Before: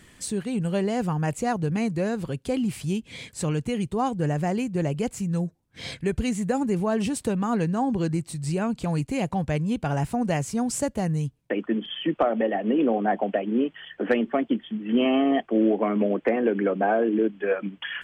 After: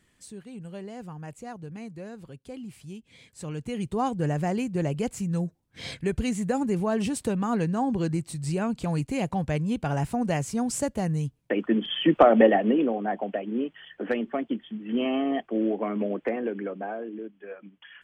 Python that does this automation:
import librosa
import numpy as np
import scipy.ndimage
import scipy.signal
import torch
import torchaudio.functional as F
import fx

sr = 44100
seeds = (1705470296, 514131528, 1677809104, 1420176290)

y = fx.gain(x, sr, db=fx.line((3.21, -14.0), (3.93, -1.5), (11.27, -1.5), (12.45, 7.5), (12.94, -5.0), (16.27, -5.0), (17.32, -16.0)))